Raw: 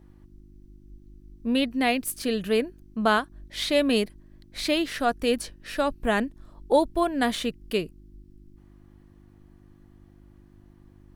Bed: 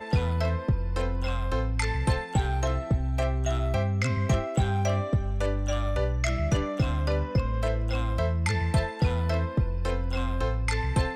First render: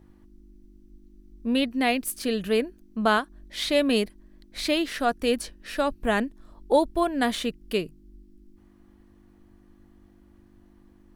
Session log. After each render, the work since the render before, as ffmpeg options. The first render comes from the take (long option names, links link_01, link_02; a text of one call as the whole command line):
ffmpeg -i in.wav -af "bandreject=frequency=50:width_type=h:width=4,bandreject=frequency=100:width_type=h:width=4,bandreject=frequency=150:width_type=h:width=4" out.wav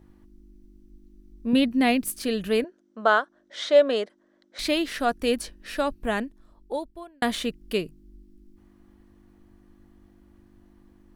ffmpeg -i in.wav -filter_complex "[0:a]asettb=1/sr,asplit=3[link_01][link_02][link_03];[link_01]atrim=end=1.534[link_04];[link_02]atrim=start=1.53:end=2.12,asetpts=PTS-STARTPTS,afade=type=in:duration=0.004:curve=qsin,afade=type=out:start_time=0.586:duration=0.004:curve=qsin,equalizer=frequency=160:width=1.2:gain=11.5[link_05];[link_03]atrim=start=2.116[link_06];[link_04][link_05]acrossfade=duration=0.004:curve1=hsin:curve2=qsin[link_07];[link_07][link_06]acrossfade=duration=0.004:curve1=qsin:curve2=hsin,asettb=1/sr,asplit=3[link_08][link_09][link_10];[link_08]atrim=end=2.644[link_11];[link_09]atrim=start=2.64:end=4.59,asetpts=PTS-STARTPTS,afade=type=in:duration=0.004:curve=qsin,afade=type=out:start_time=1.946:duration=0.004:curve=qsin,highpass=410,equalizer=frequency=560:width_type=q:width=4:gain=9,equalizer=frequency=1400:width_type=q:width=4:gain=5,equalizer=frequency=2500:width_type=q:width=4:gain=-9,equalizer=frequency=4500:width_type=q:width=4:gain=-7,lowpass=frequency=6700:width=0.5412,lowpass=frequency=6700:width=1.3066[link_12];[link_10]atrim=start=4.586[link_13];[link_11][link_12]acrossfade=duration=0.004:curve1=hsin:curve2=qsin[link_14];[link_14][link_13]acrossfade=duration=0.004:curve1=qsin:curve2=hsin,asplit=2[link_15][link_16];[link_15]atrim=end=7.22,asetpts=PTS-STARTPTS,afade=type=out:start_time=5.73:duration=1.49[link_17];[link_16]atrim=start=7.22,asetpts=PTS-STARTPTS,afade=type=in:duration=0.004:curve=hsin[link_18];[link_17][link_18]concat=n=2:v=0:a=1" out.wav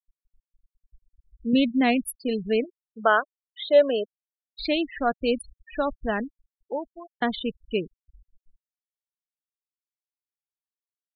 ffmpeg -i in.wav -af "afftfilt=real='re*gte(hypot(re,im),0.0562)':imag='im*gte(hypot(re,im),0.0562)':win_size=1024:overlap=0.75" out.wav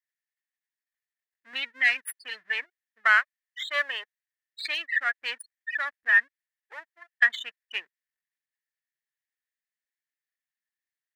ffmpeg -i in.wav -af "aeval=exprs='if(lt(val(0),0),0.447*val(0),val(0))':channel_layout=same,highpass=frequency=1800:width_type=q:width=9.8" out.wav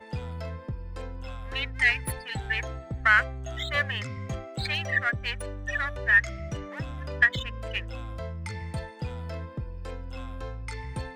ffmpeg -i in.wav -i bed.wav -filter_complex "[1:a]volume=-9.5dB[link_01];[0:a][link_01]amix=inputs=2:normalize=0" out.wav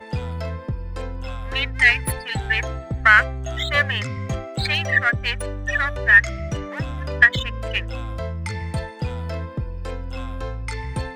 ffmpeg -i in.wav -af "volume=7.5dB,alimiter=limit=-1dB:level=0:latency=1" out.wav